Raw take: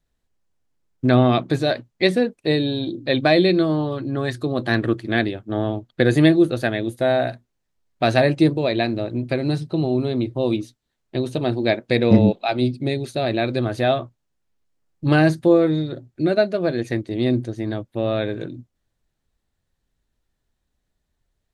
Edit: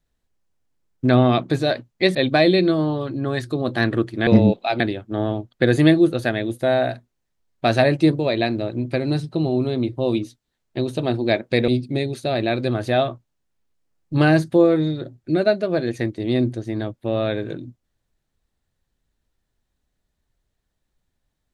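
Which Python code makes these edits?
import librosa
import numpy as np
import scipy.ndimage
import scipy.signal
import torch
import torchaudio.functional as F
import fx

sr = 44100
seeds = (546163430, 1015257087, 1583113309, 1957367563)

y = fx.edit(x, sr, fx.cut(start_s=2.15, length_s=0.91),
    fx.move(start_s=12.06, length_s=0.53, to_s=5.18), tone=tone)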